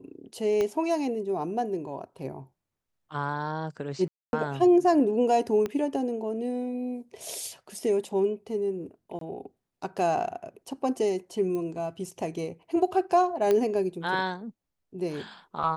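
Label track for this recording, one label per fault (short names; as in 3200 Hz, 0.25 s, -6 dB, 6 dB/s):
0.610000	0.610000	pop -16 dBFS
4.080000	4.330000	gap 0.251 s
5.660000	5.660000	pop -18 dBFS
9.190000	9.210000	gap 23 ms
11.550000	11.550000	pop -23 dBFS
13.510000	13.510000	pop -13 dBFS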